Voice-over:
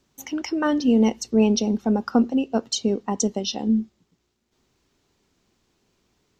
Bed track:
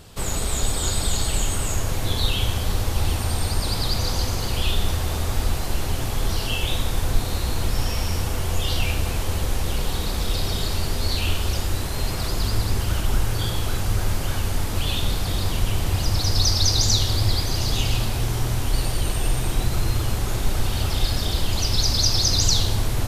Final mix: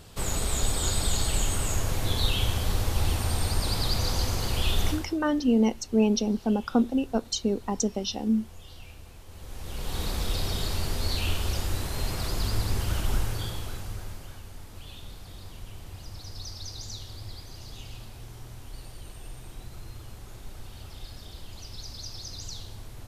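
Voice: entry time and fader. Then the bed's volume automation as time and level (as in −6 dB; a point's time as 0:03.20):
4.60 s, −4.0 dB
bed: 0:04.89 −3.5 dB
0:05.19 −23.5 dB
0:09.26 −23.5 dB
0:10.01 −5 dB
0:13.15 −5 dB
0:14.44 −20 dB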